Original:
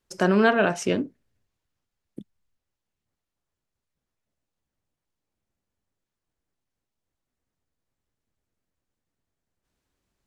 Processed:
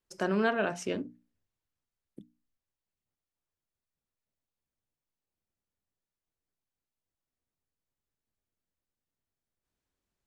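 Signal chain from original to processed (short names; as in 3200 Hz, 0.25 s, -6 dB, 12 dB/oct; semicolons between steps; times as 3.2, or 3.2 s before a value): notches 60/120/180/240/300 Hz; gain -8.5 dB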